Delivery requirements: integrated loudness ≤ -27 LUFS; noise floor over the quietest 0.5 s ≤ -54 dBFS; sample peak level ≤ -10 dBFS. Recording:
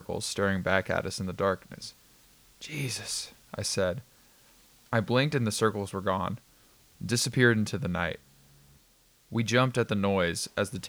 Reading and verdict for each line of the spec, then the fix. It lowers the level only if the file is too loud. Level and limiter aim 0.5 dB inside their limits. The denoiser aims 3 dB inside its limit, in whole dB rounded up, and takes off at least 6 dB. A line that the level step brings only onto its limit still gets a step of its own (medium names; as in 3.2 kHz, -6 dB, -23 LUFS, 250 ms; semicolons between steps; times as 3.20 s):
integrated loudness -29.0 LUFS: pass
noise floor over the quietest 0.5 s -63 dBFS: pass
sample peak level -8.5 dBFS: fail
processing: peak limiter -10.5 dBFS